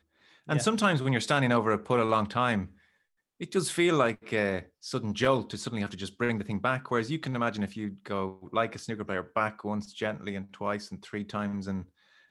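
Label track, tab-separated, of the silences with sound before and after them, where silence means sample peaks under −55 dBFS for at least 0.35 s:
2.890000	3.400000	silence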